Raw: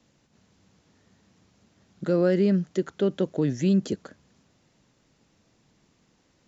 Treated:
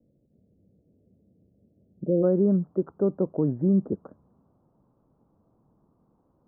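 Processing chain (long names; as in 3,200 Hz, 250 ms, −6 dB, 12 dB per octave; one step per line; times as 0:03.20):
Butterworth low-pass 600 Hz 48 dB per octave, from 0:02.22 1,200 Hz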